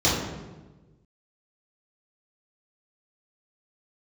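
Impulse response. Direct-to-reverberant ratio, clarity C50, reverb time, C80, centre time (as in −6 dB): −9.0 dB, 1.0 dB, 1.2 s, 4.0 dB, 69 ms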